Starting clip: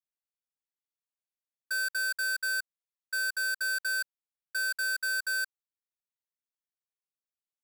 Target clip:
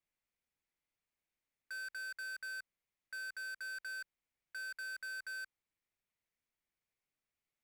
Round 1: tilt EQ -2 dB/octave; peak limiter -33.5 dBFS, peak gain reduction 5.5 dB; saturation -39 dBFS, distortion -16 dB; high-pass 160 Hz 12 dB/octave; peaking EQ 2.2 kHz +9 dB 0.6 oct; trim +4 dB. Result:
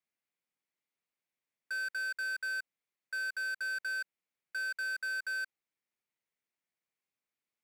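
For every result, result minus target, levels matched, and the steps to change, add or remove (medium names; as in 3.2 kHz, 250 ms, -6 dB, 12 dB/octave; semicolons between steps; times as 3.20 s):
saturation: distortion -7 dB; 125 Hz band -3.0 dB
change: saturation -48.5 dBFS, distortion -9 dB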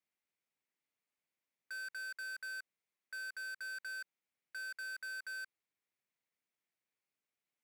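125 Hz band -4.5 dB
remove: high-pass 160 Hz 12 dB/octave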